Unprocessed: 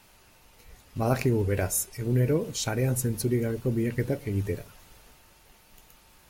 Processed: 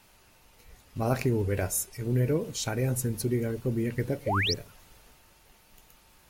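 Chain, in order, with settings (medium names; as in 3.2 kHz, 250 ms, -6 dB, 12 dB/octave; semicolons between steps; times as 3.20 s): painted sound rise, 4.26–4.54 s, 470–6100 Hz -26 dBFS; trim -2 dB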